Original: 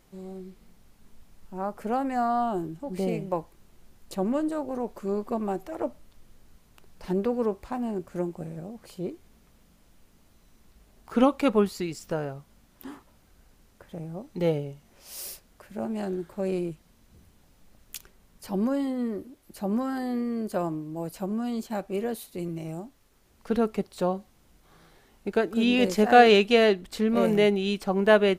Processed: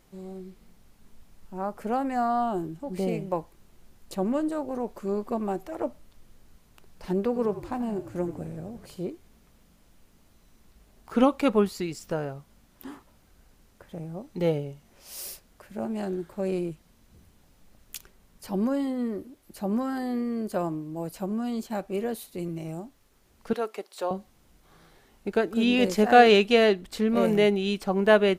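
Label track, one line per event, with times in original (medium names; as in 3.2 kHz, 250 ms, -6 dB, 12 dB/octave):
7.270000	9.050000	frequency-shifting echo 86 ms, feedback 59%, per repeat -44 Hz, level -13 dB
23.530000	24.110000	Bessel high-pass 510 Hz, order 4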